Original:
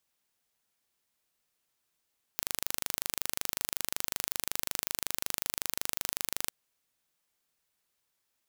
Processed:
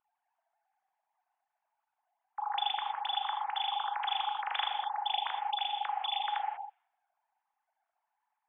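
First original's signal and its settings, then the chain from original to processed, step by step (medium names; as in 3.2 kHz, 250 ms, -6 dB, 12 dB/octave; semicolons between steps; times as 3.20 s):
pulse train 25.4 per s, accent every 0, -3.5 dBFS 4.11 s
formants replaced by sine waves; level-controlled noise filter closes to 610 Hz, open at -32 dBFS; gated-style reverb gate 220 ms flat, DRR 3.5 dB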